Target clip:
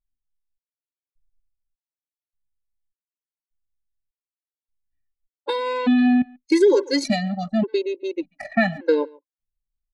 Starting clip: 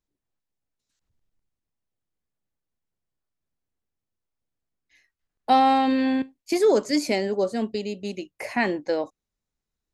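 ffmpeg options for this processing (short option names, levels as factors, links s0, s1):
-filter_complex "[0:a]asetrate=41625,aresample=44100,atempo=1.05946,anlmdn=15.8,asplit=2[s0][s1];[s1]adelay=140,highpass=300,lowpass=3400,asoftclip=type=hard:threshold=0.168,volume=0.0631[s2];[s0][s2]amix=inputs=2:normalize=0,acompressor=threshold=0.112:ratio=12,afftfilt=real='re*gt(sin(2*PI*0.85*pts/sr)*(1-2*mod(floor(b*sr/1024/280),2)),0)':imag='im*gt(sin(2*PI*0.85*pts/sr)*(1-2*mod(floor(b*sr/1024/280),2)),0)':win_size=1024:overlap=0.75,volume=2.51"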